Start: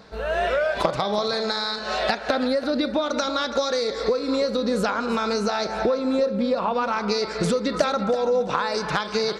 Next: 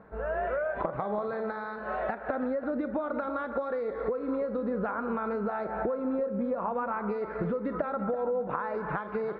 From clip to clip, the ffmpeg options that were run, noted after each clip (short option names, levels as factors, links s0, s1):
-af "acompressor=threshold=0.0708:ratio=3,lowpass=f=1700:w=0.5412,lowpass=f=1700:w=1.3066,volume=0.596"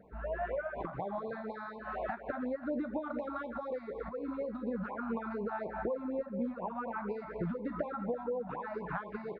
-filter_complex "[0:a]asplit=2[s0][s1];[s1]adelay=17,volume=0.299[s2];[s0][s2]amix=inputs=2:normalize=0,afftfilt=real='re*(1-between(b*sr/1024,390*pow(1600/390,0.5+0.5*sin(2*PI*4.1*pts/sr))/1.41,390*pow(1600/390,0.5+0.5*sin(2*PI*4.1*pts/sr))*1.41))':imag='im*(1-between(b*sr/1024,390*pow(1600/390,0.5+0.5*sin(2*PI*4.1*pts/sr))/1.41,390*pow(1600/390,0.5+0.5*sin(2*PI*4.1*pts/sr))*1.41))':win_size=1024:overlap=0.75,volume=0.596"